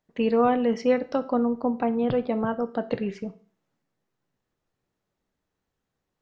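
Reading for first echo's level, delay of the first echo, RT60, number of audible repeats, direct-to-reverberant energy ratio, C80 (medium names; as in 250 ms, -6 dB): no echo, no echo, 0.45 s, no echo, 10.5 dB, 21.0 dB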